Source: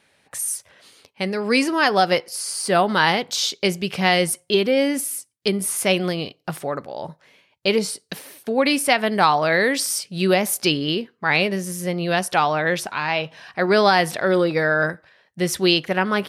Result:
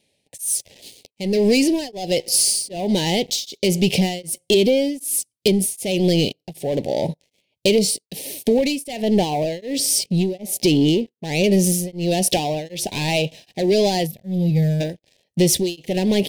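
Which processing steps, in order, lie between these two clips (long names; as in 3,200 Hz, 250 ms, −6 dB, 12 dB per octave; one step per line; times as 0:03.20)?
0:09.02–0:11.44: high-shelf EQ 2,200 Hz −9 dB
0:14.07–0:14.81: gain on a spectral selection 220–11,000 Hz −19 dB
downward compressor 10 to 1, threshold −22 dBFS, peak gain reduction 11.5 dB
leveller curve on the samples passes 3
Butterworth band-reject 1,300 Hz, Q 0.63
tremolo along a rectified sine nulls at 1.3 Hz
level +3.5 dB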